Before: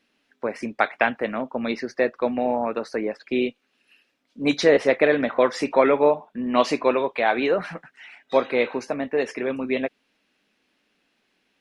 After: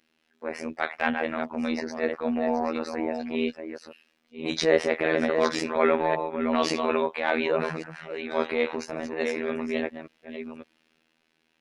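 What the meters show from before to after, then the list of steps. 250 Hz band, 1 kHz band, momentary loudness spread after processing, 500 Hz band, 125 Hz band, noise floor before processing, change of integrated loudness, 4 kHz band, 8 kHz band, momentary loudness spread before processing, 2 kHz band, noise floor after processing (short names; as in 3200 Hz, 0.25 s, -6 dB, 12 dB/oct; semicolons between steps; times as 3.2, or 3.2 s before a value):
-3.0 dB, -4.0 dB, 15 LU, -5.0 dB, -2.5 dB, -71 dBFS, -4.0 dB, -1.5 dB, 0.0 dB, 11 LU, -3.0 dB, -71 dBFS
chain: reverse delay 0.559 s, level -8 dB; transient shaper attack -9 dB, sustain +3 dB; robotiser 80.1 Hz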